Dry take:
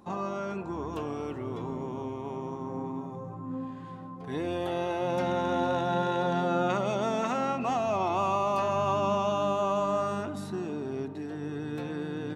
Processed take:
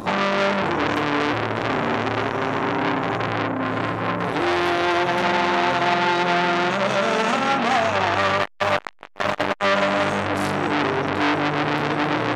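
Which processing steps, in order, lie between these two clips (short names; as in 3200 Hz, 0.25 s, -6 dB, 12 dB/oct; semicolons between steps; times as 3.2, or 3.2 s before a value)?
in parallel at +2 dB: negative-ratio compressor -40 dBFS, ratio -1; 8.41–9.58 on the sum: overloaded stage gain 24 dB; tremolo saw down 2.5 Hz, depth 30%; resonator bank G2 minor, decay 0.21 s; 1.28–2.54 flutter echo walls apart 4.5 m, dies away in 0.26 s; on a send at -15 dB: reverb RT60 0.70 s, pre-delay 17 ms; on the sum: maximiser +30.5 dB; core saturation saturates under 1800 Hz; gain -5 dB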